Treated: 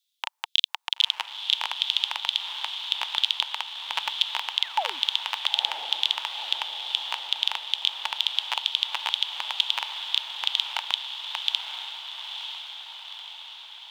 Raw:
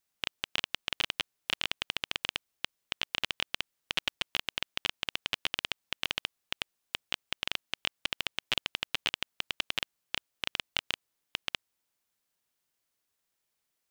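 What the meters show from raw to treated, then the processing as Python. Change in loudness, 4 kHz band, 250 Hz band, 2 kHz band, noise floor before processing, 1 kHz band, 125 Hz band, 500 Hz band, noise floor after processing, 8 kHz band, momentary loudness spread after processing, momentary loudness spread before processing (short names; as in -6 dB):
+8.5 dB, +10.0 dB, under -10 dB, +2.0 dB, -82 dBFS, +11.0 dB, under -20 dB, 0.0 dB, -74 dBFS, +2.5 dB, 10 LU, 6 LU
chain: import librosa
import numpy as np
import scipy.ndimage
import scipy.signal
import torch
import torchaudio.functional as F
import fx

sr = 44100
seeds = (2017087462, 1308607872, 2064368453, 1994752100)

y = fx.spec_paint(x, sr, seeds[0], shape='fall', start_s=4.62, length_s=0.38, low_hz=230.0, high_hz=2300.0, level_db=-34.0)
y = fx.filter_lfo_highpass(y, sr, shape='square', hz=2.2, low_hz=900.0, high_hz=3500.0, q=7.0)
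y = fx.echo_diffused(y, sr, ms=945, feedback_pct=60, wet_db=-7.0)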